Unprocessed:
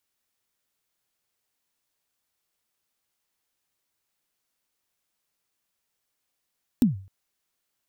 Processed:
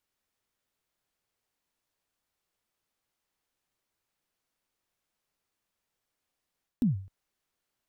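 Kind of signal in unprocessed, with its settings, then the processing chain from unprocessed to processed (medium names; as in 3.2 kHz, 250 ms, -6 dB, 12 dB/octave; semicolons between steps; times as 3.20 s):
kick drum length 0.26 s, from 270 Hz, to 96 Hz, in 138 ms, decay 0.42 s, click on, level -12 dB
bass shelf 310 Hz -6 dB; reverse; compression, threshold -29 dBFS; reverse; tilt EQ -2 dB/octave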